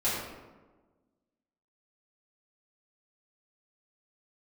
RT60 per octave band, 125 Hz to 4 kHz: 1.4, 1.7, 1.4, 1.2, 0.95, 0.65 seconds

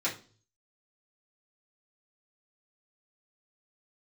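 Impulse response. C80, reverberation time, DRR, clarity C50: 17.0 dB, 0.40 s, −8.5 dB, 11.0 dB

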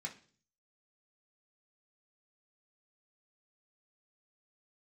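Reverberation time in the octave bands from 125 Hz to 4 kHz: 0.75, 0.60, 0.50, 0.40, 0.40, 0.50 seconds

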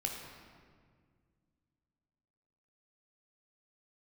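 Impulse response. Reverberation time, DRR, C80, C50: 1.9 s, 0.5 dB, 4.5 dB, 3.0 dB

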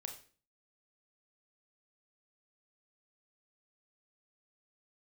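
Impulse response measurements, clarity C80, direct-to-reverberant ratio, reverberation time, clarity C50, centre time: 13.5 dB, 3.0 dB, 0.40 s, 9.5 dB, 17 ms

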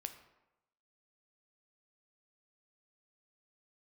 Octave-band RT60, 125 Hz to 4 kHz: 0.90, 0.90, 0.95, 0.95, 0.80, 0.60 seconds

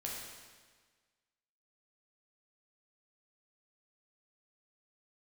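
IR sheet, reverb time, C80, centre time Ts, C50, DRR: 1.5 s, 2.5 dB, 83 ms, 0.5 dB, −3.5 dB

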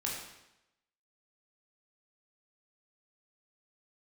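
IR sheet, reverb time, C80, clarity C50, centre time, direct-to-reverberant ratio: 0.90 s, 4.5 dB, 2.5 dB, 55 ms, −3.5 dB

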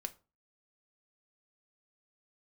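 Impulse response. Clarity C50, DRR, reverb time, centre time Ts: 19.5 dB, 7.0 dB, 0.35 s, 4 ms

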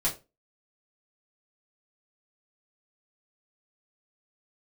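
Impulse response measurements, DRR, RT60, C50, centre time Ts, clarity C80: −7.0 dB, 0.25 s, 12.5 dB, 18 ms, 19.5 dB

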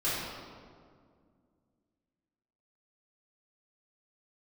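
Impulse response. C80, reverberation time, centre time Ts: 0.5 dB, 2.0 s, 118 ms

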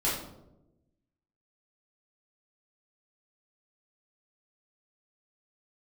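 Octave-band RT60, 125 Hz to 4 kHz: 1.4, 1.3, 1.1, 0.75, 0.50, 0.45 seconds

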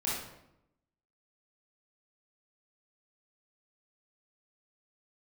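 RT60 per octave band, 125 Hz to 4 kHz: 1.0, 1.0, 0.85, 0.80, 0.70, 0.60 seconds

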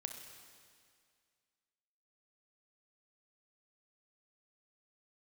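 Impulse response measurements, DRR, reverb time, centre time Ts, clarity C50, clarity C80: 4.5 dB, 2.1 s, 47 ms, 5.5 dB, 6.5 dB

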